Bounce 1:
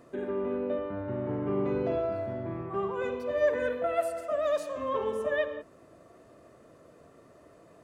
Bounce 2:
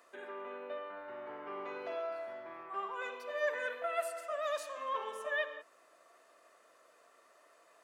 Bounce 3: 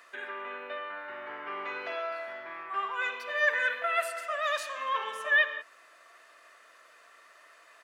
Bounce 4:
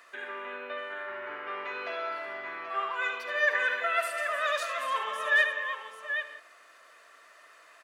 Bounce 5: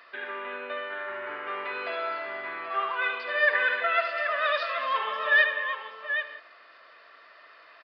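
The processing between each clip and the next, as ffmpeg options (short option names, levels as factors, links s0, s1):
-af "highpass=1000"
-af "firequalizer=gain_entry='entry(490,0);entry(1700,13);entry(7600,5)':delay=0.05:min_phase=1"
-af "aecho=1:1:73|206|303|781:0.335|0.15|0.237|0.376"
-af "aresample=11025,aresample=44100,volume=1.41"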